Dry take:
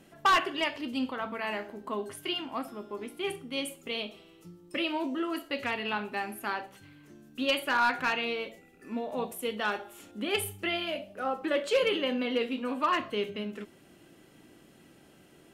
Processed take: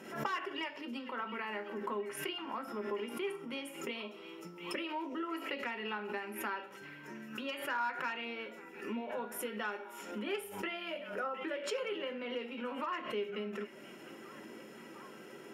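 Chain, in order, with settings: compression 5:1, threshold -45 dBFS, peak gain reduction 21 dB; repeats whose band climbs or falls 710 ms, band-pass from 2.8 kHz, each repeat -0.7 oct, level -12 dB; reverberation RT60 0.10 s, pre-delay 3 ms, DRR 9.5 dB; swell ahead of each attack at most 81 dB/s; trim +1 dB

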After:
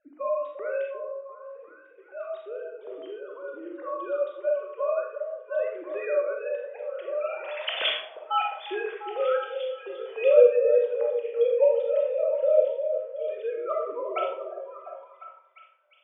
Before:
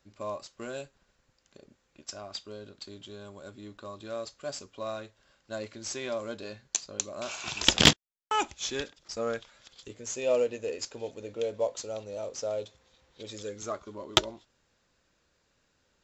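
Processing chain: formants replaced by sine waves; in parallel at +1 dB: compression, threshold -39 dBFS, peak gain reduction 20.5 dB; on the sum: level-controlled noise filter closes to 1.3 kHz, open at -22.5 dBFS; repeats whose band climbs or falls 350 ms, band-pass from 480 Hz, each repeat 0.7 oct, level -6.5 dB; reverberation RT60 0.65 s, pre-delay 4 ms, DRR -0.5 dB

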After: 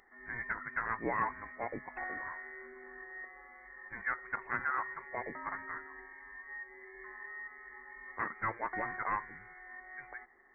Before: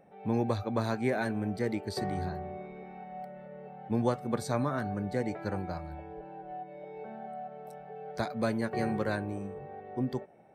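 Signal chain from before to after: Bessel high-pass 1.4 kHz, order 4; in parallel at -7 dB: wavefolder -34.5 dBFS; on the sum: frequency inversion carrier 2.6 kHz; trim +5 dB

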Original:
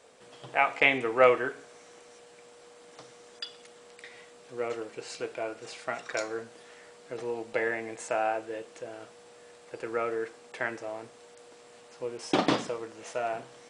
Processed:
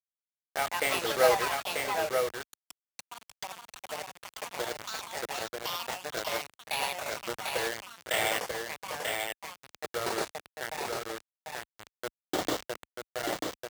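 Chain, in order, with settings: fifteen-band graphic EQ 160 Hz -11 dB, 1 kHz -7 dB, 2.5 kHz -7 dB; bit crusher 5-bit; time-frequency box 8.00–8.39 s, 1.7–3.7 kHz +12 dB; delay 939 ms -4 dB; careless resampling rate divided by 4×, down none, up hold; high-pass 50 Hz; peaking EQ 250 Hz -7 dB 0.46 oct; band-stop 2.5 kHz, Q 10; ever faster or slower copies 273 ms, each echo +4 st, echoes 3; trim -2.5 dB

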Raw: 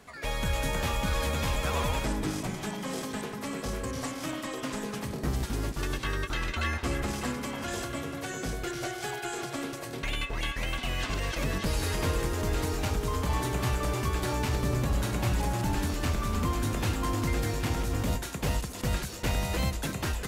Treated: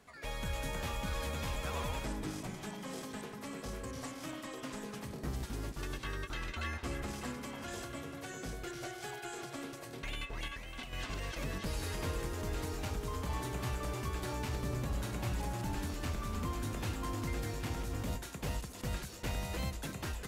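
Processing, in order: 10.48–10.93 s: compressor with a negative ratio -36 dBFS, ratio -1; trim -8.5 dB

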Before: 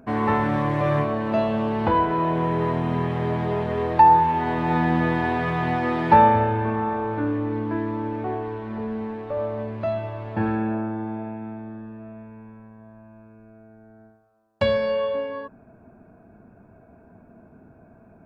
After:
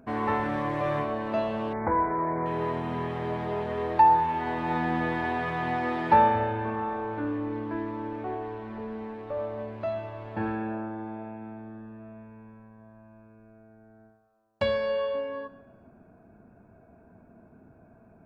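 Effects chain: reverberation RT60 1.2 s, pre-delay 45 ms, DRR 15 dB; dynamic bell 140 Hz, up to -6 dB, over -39 dBFS, Q 1; 1.73–2.46 s: brick-wall FIR low-pass 2.4 kHz; trim -4.5 dB

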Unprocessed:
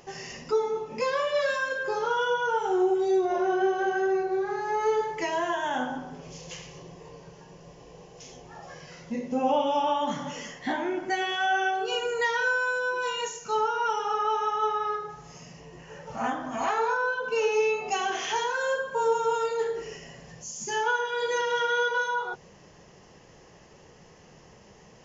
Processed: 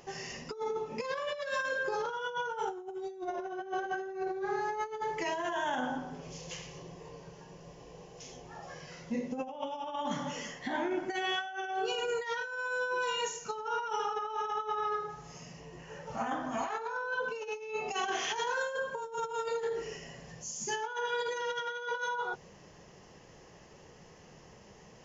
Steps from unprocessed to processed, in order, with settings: compressor with a negative ratio -29 dBFS, ratio -0.5; trim -5 dB

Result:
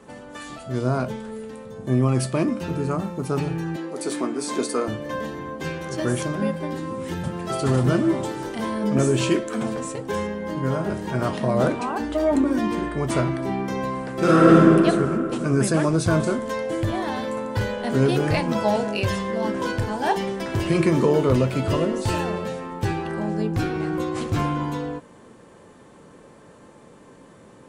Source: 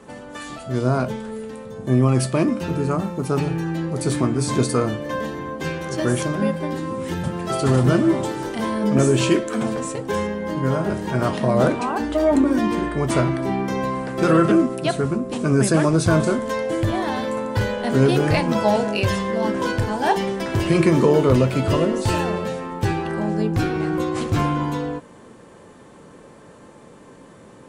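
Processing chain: 3.76–4.88 s: high-pass 250 Hz 24 dB/octave; 14.19–14.59 s: reverb throw, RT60 2.8 s, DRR -5.5 dB; trim -3 dB

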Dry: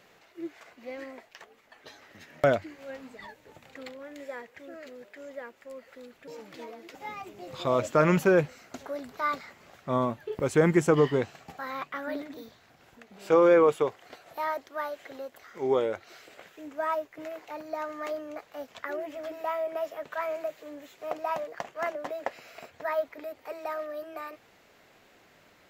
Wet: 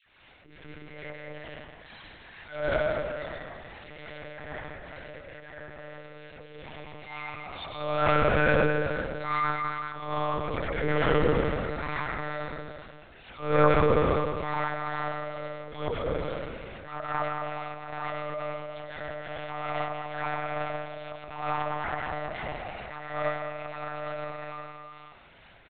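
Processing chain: CVSD coder 64 kbps; plate-style reverb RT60 1.9 s, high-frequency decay 0.7×, pre-delay 80 ms, DRR -4.5 dB; slow attack 113 ms; phase dispersion lows, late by 95 ms, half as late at 940 Hz; on a send: feedback delay 276 ms, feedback 36%, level -16 dB; on the sum: harmonic tremolo 2.3 Hz, depth 50%, crossover 450 Hz; tilt EQ +3 dB/octave; speakerphone echo 200 ms, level -8 dB; transient shaper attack -10 dB, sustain +2 dB; monotone LPC vocoder at 8 kHz 150 Hz

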